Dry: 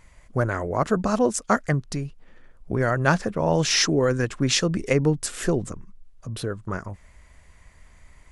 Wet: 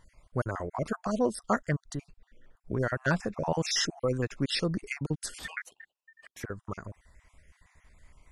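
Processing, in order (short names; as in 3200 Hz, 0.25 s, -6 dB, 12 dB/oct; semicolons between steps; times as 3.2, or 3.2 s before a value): random spectral dropouts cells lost 37%; 5.39–6.44 ring modulator 1800 Hz; gain -6 dB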